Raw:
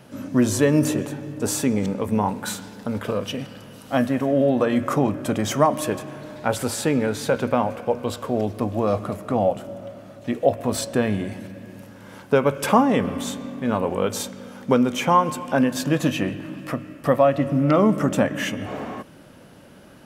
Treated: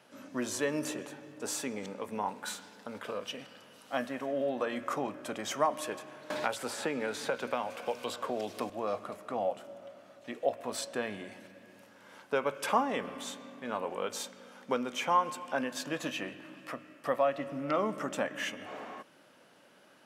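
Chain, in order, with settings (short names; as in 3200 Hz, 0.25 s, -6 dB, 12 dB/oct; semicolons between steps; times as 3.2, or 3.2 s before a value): weighting filter A; 6.3–8.7 three-band squash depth 100%; gain -9 dB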